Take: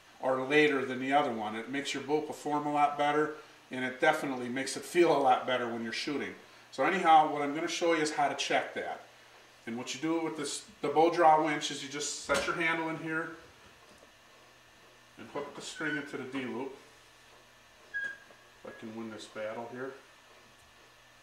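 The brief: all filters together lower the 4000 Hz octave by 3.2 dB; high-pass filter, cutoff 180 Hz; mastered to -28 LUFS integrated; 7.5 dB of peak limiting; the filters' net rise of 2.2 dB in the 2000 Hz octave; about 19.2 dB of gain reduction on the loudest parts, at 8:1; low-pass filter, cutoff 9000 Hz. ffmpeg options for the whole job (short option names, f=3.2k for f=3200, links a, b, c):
-af "highpass=180,lowpass=9k,equalizer=f=2k:t=o:g=4,equalizer=f=4k:t=o:g=-6,acompressor=threshold=-38dB:ratio=8,volume=16.5dB,alimiter=limit=-18dB:level=0:latency=1"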